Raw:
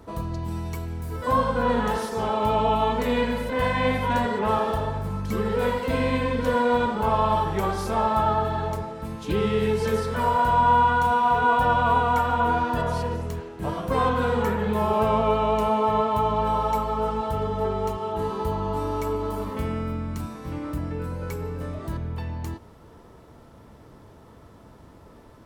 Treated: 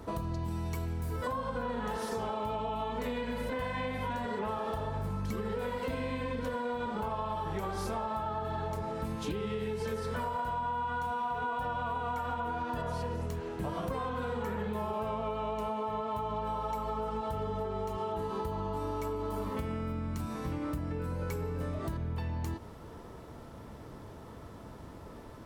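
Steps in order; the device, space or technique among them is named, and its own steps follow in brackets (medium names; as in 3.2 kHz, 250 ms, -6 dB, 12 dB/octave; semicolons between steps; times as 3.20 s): serial compression, peaks first (compression, threshold -29 dBFS, peak gain reduction 13 dB; compression 3:1, threshold -34 dBFS, peak gain reduction 5.5 dB); trim +1.5 dB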